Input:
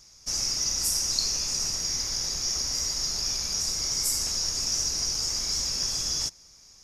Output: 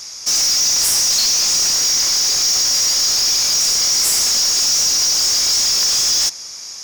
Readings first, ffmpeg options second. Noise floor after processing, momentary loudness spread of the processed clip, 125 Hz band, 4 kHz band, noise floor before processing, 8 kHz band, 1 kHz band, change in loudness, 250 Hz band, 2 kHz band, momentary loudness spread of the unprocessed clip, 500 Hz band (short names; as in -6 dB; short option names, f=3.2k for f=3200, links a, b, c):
-32 dBFS, 1 LU, n/a, +13.0 dB, -54 dBFS, +13.0 dB, +12.5 dB, +13.0 dB, +5.5 dB, +14.5 dB, 3 LU, +9.5 dB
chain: -filter_complex "[0:a]asplit=2[a][b];[b]highpass=f=720:p=1,volume=27dB,asoftclip=type=tanh:threshold=-9.5dB[c];[a][c]amix=inputs=2:normalize=0,lowpass=f=3.8k:p=1,volume=-6dB,highshelf=f=4.6k:g=9"